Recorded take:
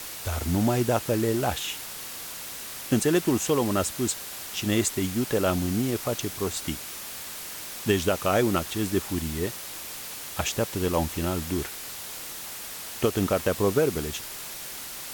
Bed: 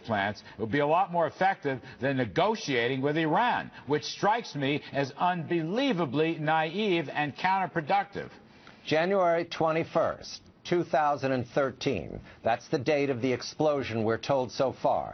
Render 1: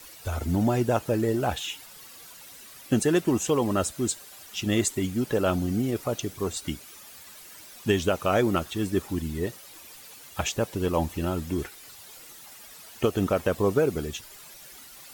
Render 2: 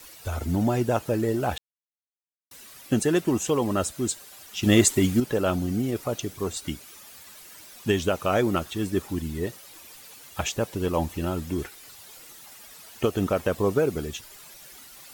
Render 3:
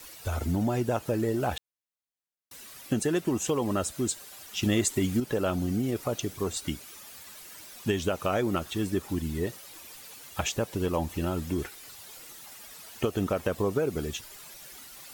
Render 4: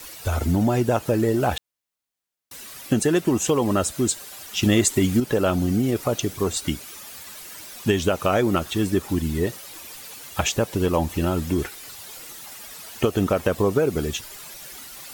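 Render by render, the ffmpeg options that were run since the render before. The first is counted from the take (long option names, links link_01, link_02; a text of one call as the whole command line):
ffmpeg -i in.wav -af "afftdn=noise_reduction=12:noise_floor=-38" out.wav
ffmpeg -i in.wav -filter_complex "[0:a]asplit=5[link_01][link_02][link_03][link_04][link_05];[link_01]atrim=end=1.58,asetpts=PTS-STARTPTS,afade=type=out:start_time=1.576:duration=0.004:curve=hsin[link_06];[link_02]atrim=start=1.58:end=2.51,asetpts=PTS-STARTPTS,volume=0[link_07];[link_03]atrim=start=2.51:end=4.632,asetpts=PTS-STARTPTS,afade=type=in:duration=0.004:curve=hsin[link_08];[link_04]atrim=start=4.628:end=5.202,asetpts=PTS-STARTPTS,volume=6.5dB[link_09];[link_05]atrim=start=5.198[link_10];[link_06][link_07][link_08]concat=n=3:v=0:a=1[link_11];[link_11][link_09]acrossfade=duration=0.004:curve1=hsin:curve2=hsin[link_12];[link_12][link_10]acrossfade=duration=0.004:curve1=hsin:curve2=hsin" out.wav
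ffmpeg -i in.wav -af "acompressor=threshold=-25dB:ratio=2.5" out.wav
ffmpeg -i in.wav -af "volume=7dB" out.wav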